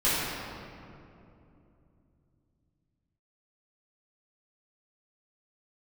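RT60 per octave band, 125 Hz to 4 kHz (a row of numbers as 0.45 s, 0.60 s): 4.6 s, 3.9 s, 3.1 s, 2.5 s, 2.0 s, 1.4 s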